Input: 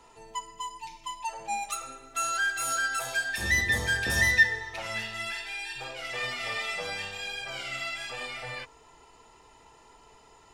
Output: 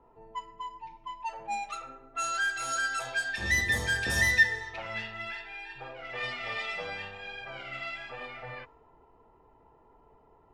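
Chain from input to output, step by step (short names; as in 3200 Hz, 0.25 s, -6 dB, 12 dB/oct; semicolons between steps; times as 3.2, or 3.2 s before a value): low-pass opened by the level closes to 770 Hz, open at -23.5 dBFS; gain -1.5 dB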